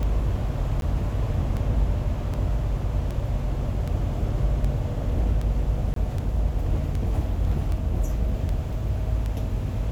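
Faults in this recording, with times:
scratch tick 78 rpm −19 dBFS
0:00.81–0:00.82: drop-out
0:05.94–0:05.96: drop-out 23 ms

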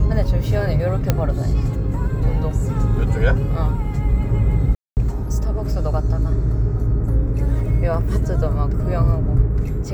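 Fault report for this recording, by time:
0:01.10: click −3 dBFS
0:04.75–0:04.97: drop-out 219 ms

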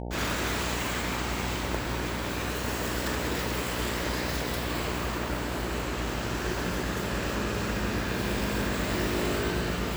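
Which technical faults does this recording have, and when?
mains buzz 60 Hz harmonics 15 −35 dBFS

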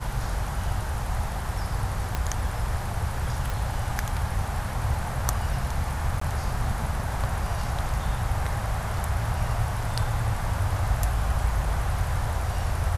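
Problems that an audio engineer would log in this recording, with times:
0:02.15: click −12 dBFS
0:03.50: click
0:06.20–0:06.21: drop-out 14 ms

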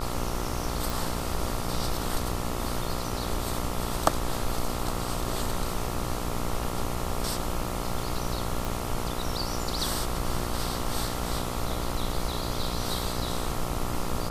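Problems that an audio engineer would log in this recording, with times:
mains buzz 60 Hz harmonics 23 −34 dBFS
0:00.90: click
0:08.65: click

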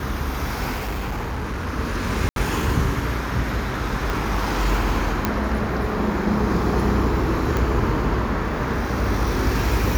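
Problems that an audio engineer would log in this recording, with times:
0:00.77–0:01.67: clipping −23 dBFS
0:02.29–0:02.36: drop-out 72 ms
0:04.10: click
0:05.25: click −6 dBFS
0:07.57: click

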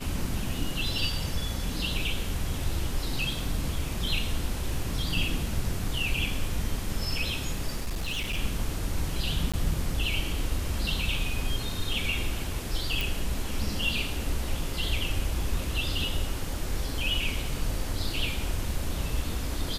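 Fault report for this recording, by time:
0:07.76–0:08.38: clipping −26.5 dBFS
0:09.52–0:09.54: drop-out 16 ms
0:13.01: click

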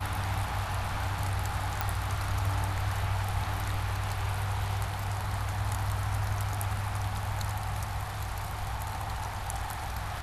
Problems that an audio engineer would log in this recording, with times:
0:01.81: click

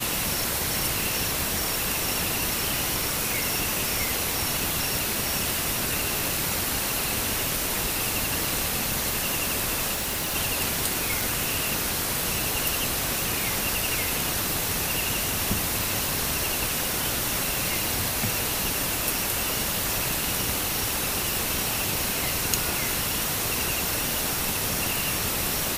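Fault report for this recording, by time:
0:09.93–0:10.36: clipping −24.5 dBFS
0:11.21: click

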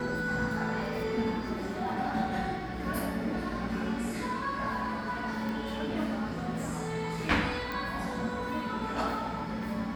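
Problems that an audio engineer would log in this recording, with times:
0:05.49: click
0:07.72: click

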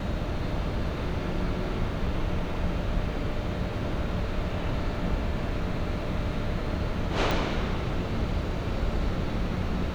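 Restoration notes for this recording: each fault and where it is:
0:07.31: click

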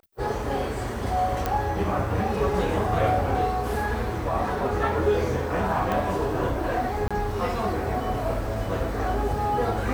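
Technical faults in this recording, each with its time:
0:01.46: click −11 dBFS
0:05.92: click
0:07.08–0:07.11: drop-out 26 ms

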